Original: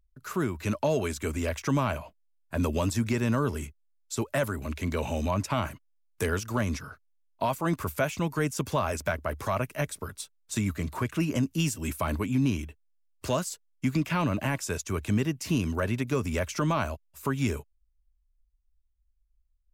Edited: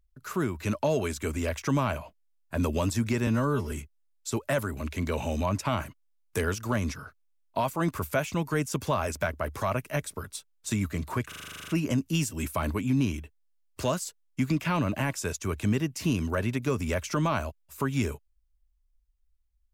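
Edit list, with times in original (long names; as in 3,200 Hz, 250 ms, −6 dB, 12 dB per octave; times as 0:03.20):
0:03.27–0:03.57: time-stretch 1.5×
0:11.13: stutter 0.04 s, 11 plays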